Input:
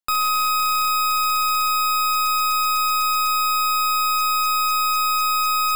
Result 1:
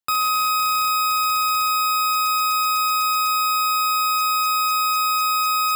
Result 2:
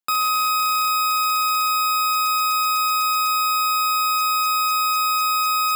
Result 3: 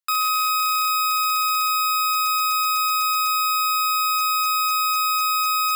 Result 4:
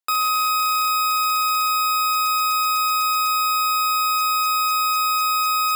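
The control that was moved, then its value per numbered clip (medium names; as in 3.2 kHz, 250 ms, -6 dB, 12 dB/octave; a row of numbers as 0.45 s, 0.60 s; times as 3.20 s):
high-pass, cutoff frequency: 45 Hz, 140 Hz, 1.1 kHz, 350 Hz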